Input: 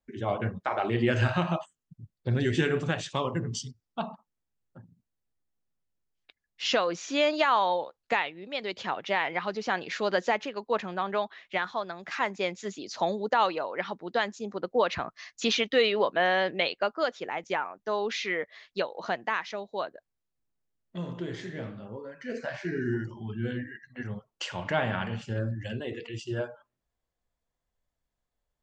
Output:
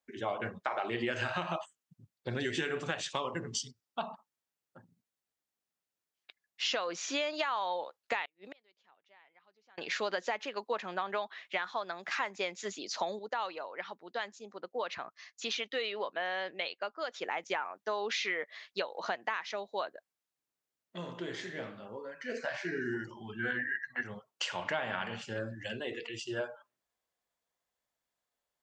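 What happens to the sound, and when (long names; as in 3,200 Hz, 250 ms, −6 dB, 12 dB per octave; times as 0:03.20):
0:08.25–0:09.78: gate with flip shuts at −32 dBFS, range −35 dB
0:13.19–0:17.14: clip gain −8.5 dB
0:23.39–0:24.01: flat-topped bell 1,200 Hz +11 dB
whole clip: high-pass filter 620 Hz 6 dB per octave; downward compressor 6 to 1, threshold −32 dBFS; level +2 dB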